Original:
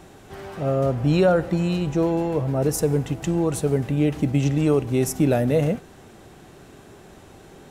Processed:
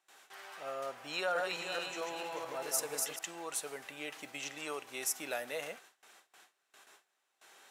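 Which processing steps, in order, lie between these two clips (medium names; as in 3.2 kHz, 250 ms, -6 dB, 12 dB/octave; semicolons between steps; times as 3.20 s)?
1.13–3.19 s: backward echo that repeats 220 ms, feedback 45%, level -2 dB; high-pass 1.2 kHz 12 dB/octave; gate with hold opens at -44 dBFS; trim -4.5 dB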